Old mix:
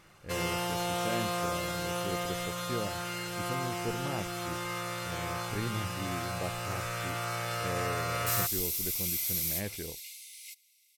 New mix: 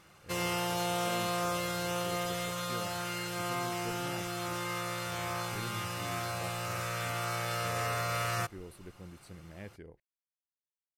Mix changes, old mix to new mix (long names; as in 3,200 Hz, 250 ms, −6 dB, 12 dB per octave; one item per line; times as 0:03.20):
speech −8.5 dB
second sound: muted